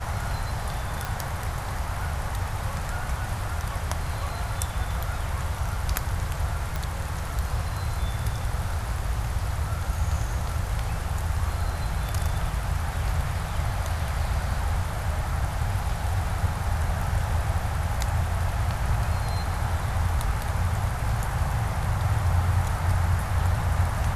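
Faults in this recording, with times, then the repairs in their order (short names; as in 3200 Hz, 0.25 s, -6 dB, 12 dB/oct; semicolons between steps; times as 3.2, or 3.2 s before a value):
1.05 pop
6.76 pop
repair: de-click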